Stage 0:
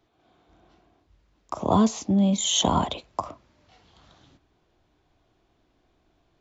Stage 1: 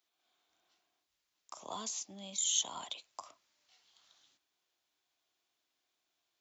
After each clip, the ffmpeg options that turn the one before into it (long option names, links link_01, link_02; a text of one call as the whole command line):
ffmpeg -i in.wav -filter_complex "[0:a]aderivative,asplit=2[link_01][link_02];[link_02]acompressor=threshold=-38dB:ratio=6,volume=0.5dB[link_03];[link_01][link_03]amix=inputs=2:normalize=0,volume=-6.5dB" out.wav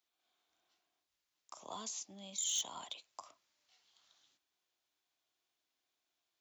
ffmpeg -i in.wav -af "volume=26dB,asoftclip=hard,volume=-26dB,volume=-3.5dB" out.wav